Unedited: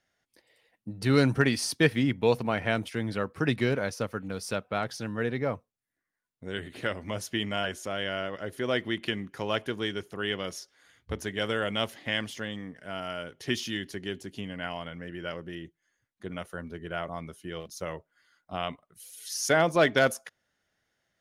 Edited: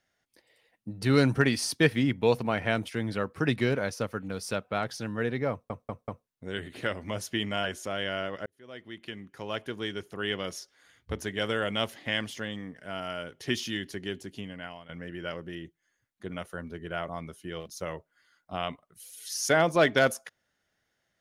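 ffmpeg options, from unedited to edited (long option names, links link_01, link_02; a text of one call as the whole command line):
ffmpeg -i in.wav -filter_complex "[0:a]asplit=7[link_01][link_02][link_03][link_04][link_05][link_06][link_07];[link_01]atrim=end=5.702[link_08];[link_02]atrim=start=5.508:end=5.702[link_09];[link_03]atrim=start=5.508:end=5.702[link_10];[link_04]atrim=start=5.508:end=5.702[link_11];[link_05]atrim=start=6.268:end=8.46,asetpts=PTS-STARTPTS,afade=type=out:start_time=2.188:duration=0.004:curve=hsin[link_12];[link_06]atrim=start=8.46:end=14.89,asetpts=PTS-STARTPTS,afade=type=in:duration=1.89,afade=type=out:start_time=5.56:duration=0.87:curve=qsin:silence=0.177828[link_13];[link_07]atrim=start=14.89,asetpts=PTS-STARTPTS,afade=type=in:duration=0.004:curve=hsin:silence=0.177828[link_14];[link_08][link_09]acrossfade=duration=0.004:curve1=hsin:curve2=hsin[link_15];[link_15][link_10]acrossfade=duration=0.004:curve1=hsin:curve2=hsin[link_16];[link_16][link_11]acrossfade=duration=0.004:curve1=hsin:curve2=hsin[link_17];[link_12][link_13][link_14]concat=n=3:v=0:a=1[link_18];[link_17][link_18]acrossfade=duration=0.004:curve1=hsin:curve2=hsin" out.wav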